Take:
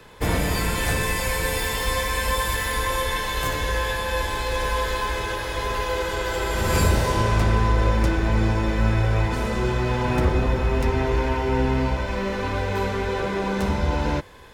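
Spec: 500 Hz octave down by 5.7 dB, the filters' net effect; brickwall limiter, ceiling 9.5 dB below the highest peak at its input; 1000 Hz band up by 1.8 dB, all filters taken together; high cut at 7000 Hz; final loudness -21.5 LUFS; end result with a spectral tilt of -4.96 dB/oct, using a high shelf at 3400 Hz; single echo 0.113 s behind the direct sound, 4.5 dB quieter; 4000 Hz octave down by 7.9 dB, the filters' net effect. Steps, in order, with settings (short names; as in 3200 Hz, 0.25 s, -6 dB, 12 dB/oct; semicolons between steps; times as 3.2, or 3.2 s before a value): LPF 7000 Hz; bell 500 Hz -8 dB; bell 1000 Hz +4.5 dB; high shelf 3400 Hz -5 dB; bell 4000 Hz -6.5 dB; limiter -18 dBFS; echo 0.113 s -4.5 dB; gain +4.5 dB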